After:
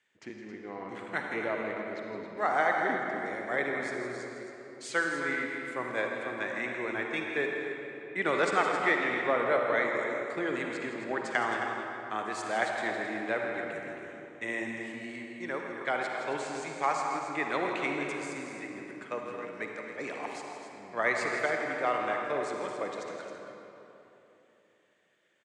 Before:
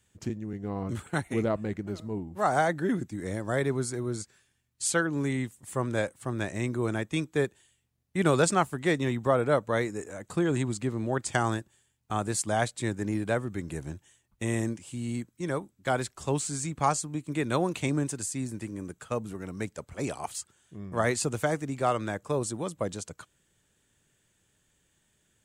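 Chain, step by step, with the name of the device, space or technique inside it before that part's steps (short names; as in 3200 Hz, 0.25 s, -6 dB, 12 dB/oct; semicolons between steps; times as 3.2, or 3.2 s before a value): station announcement (BPF 370–4200 Hz; bell 2000 Hz +10 dB 0.57 oct; loudspeakers at several distances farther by 56 m -11 dB, 92 m -10 dB; reverb RT60 3.2 s, pre-delay 45 ms, DRR 1.5 dB); gain -4 dB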